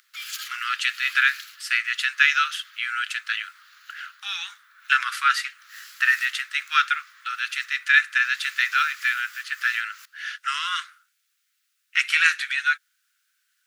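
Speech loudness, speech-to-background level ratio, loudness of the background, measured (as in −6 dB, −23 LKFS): −23.0 LKFS, 19.5 dB, −42.5 LKFS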